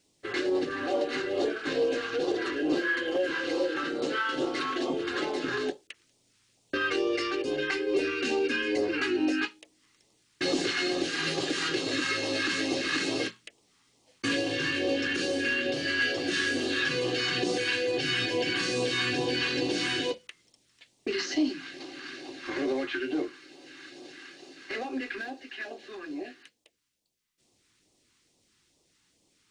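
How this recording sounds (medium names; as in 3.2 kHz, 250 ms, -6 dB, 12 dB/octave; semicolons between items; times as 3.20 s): phasing stages 2, 2.3 Hz, lowest notch 590–1500 Hz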